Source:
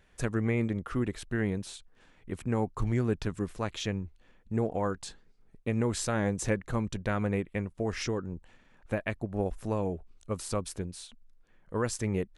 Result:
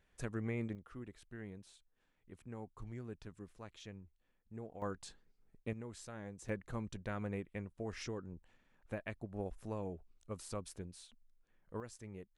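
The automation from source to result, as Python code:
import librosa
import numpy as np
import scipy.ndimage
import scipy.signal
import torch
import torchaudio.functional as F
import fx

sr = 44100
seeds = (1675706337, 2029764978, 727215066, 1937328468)

y = fx.gain(x, sr, db=fx.steps((0.0, -10.5), (0.75, -18.5), (4.82, -9.5), (5.73, -19.0), (6.49, -11.0), (11.8, -19.5)))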